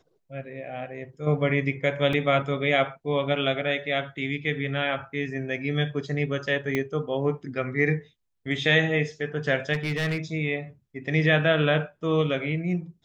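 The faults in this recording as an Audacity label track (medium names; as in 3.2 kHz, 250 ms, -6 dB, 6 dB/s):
2.130000	2.130000	dropout 2.5 ms
6.750000	6.750000	pop -13 dBFS
9.730000	10.180000	clipped -22.5 dBFS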